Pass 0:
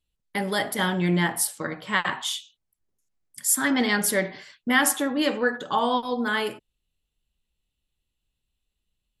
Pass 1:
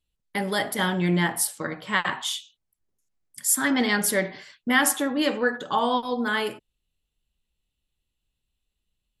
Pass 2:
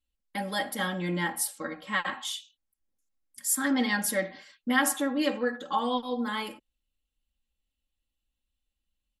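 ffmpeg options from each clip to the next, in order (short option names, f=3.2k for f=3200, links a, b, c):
-af anull
-af "aecho=1:1:3.7:0.81,volume=-7.5dB"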